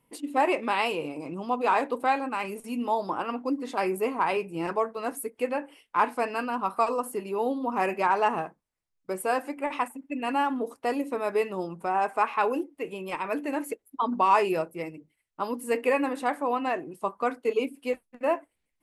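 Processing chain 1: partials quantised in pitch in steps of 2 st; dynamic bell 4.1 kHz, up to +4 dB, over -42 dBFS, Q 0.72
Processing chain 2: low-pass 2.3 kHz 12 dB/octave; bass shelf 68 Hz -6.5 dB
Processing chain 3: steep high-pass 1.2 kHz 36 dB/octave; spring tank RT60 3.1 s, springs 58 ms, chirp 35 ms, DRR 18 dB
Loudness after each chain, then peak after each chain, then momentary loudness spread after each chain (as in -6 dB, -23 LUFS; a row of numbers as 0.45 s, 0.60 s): -27.0 LUFS, -29.0 LUFS, -36.0 LUFS; -7.5 dBFS, -10.5 dBFS, -16.0 dBFS; 9 LU, 9 LU, 12 LU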